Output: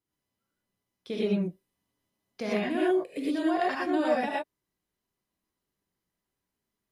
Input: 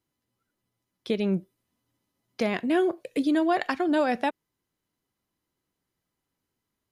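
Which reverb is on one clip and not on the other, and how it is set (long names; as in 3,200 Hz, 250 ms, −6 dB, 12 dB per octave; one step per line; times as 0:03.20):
reverb whose tail is shaped and stops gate 140 ms rising, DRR −5.5 dB
level −9 dB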